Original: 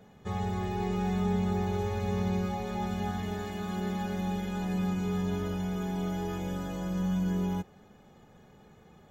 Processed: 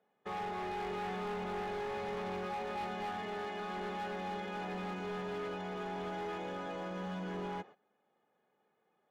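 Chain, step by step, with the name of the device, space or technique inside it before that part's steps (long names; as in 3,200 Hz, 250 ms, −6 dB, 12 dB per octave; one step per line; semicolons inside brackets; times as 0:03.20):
walkie-talkie (band-pass filter 410–2,800 Hz; hard clipping −38 dBFS, distortion −10 dB; noise gate −55 dBFS, range −18 dB)
level +2 dB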